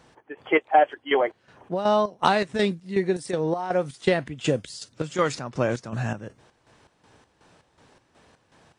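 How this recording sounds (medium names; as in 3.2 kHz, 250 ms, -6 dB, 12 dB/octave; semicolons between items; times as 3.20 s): chopped level 2.7 Hz, depth 65%, duty 55%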